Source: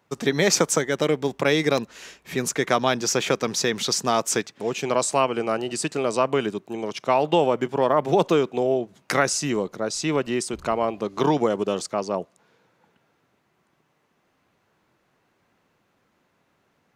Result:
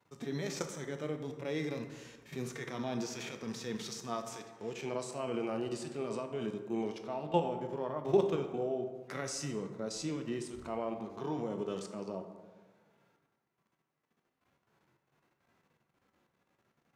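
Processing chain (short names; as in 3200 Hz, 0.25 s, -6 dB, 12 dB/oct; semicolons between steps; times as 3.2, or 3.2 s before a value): level quantiser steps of 17 dB; harmonic-percussive split percussive -16 dB; plate-style reverb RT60 1.4 s, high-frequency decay 0.45×, DRR 5.5 dB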